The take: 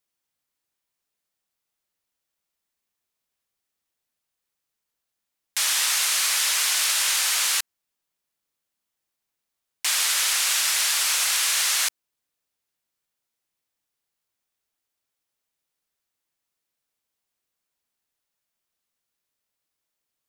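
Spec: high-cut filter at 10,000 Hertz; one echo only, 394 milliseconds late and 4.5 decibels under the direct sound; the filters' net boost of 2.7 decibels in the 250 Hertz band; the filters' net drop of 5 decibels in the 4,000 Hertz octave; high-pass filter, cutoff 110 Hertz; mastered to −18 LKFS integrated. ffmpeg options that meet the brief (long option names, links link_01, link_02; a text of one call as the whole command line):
ffmpeg -i in.wav -af "highpass=110,lowpass=10000,equalizer=frequency=250:width_type=o:gain=4,equalizer=frequency=4000:width_type=o:gain=-6.5,aecho=1:1:394:0.596,volume=5dB" out.wav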